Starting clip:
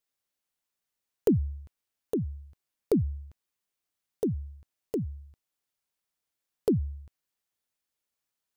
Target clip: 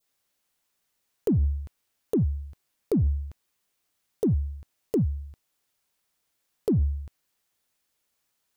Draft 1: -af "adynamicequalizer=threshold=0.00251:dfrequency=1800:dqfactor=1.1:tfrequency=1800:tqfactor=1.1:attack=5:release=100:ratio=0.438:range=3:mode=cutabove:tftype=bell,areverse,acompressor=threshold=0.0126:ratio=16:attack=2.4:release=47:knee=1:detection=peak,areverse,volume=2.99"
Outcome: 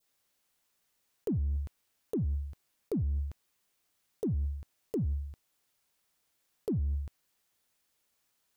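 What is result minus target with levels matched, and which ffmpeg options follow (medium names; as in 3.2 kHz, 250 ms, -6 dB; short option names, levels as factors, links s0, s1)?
compression: peak gain reduction +8.5 dB
-af "adynamicequalizer=threshold=0.00251:dfrequency=1800:dqfactor=1.1:tfrequency=1800:tqfactor=1.1:attack=5:release=100:ratio=0.438:range=3:mode=cutabove:tftype=bell,areverse,acompressor=threshold=0.0355:ratio=16:attack=2.4:release=47:knee=1:detection=peak,areverse,volume=2.99"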